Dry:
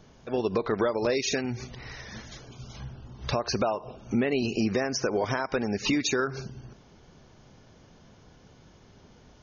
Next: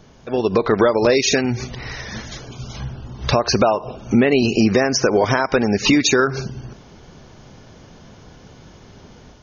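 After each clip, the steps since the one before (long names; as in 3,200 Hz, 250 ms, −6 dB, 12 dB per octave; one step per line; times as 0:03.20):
automatic gain control gain up to 4.5 dB
level +6.5 dB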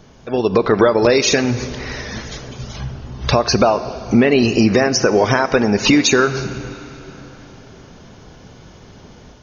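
convolution reverb RT60 4.1 s, pre-delay 3 ms, DRR 13.5 dB
level +2 dB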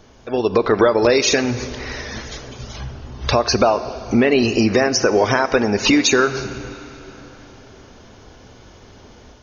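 parametric band 160 Hz −10.5 dB 0.53 octaves
level −1 dB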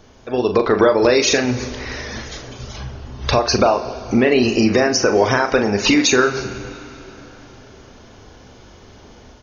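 double-tracking delay 40 ms −8.5 dB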